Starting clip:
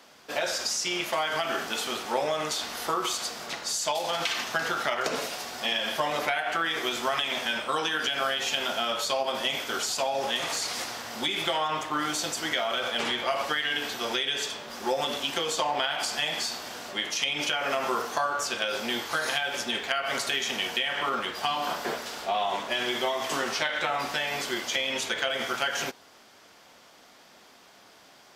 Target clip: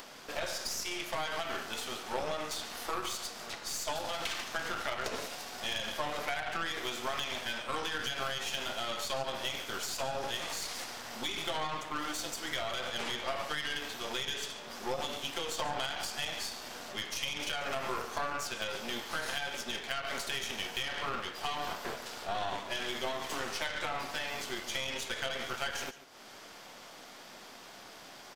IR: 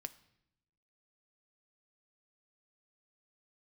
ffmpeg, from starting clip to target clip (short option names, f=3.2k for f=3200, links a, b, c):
-af "acompressor=mode=upward:threshold=-30dB:ratio=2.5,aecho=1:1:142:0.188,aeval=exprs='0.251*(cos(1*acos(clip(val(0)/0.251,-1,1)))-cos(1*PI/2))+0.0282*(cos(8*acos(clip(val(0)/0.251,-1,1)))-cos(8*PI/2))':c=same,volume=-8.5dB"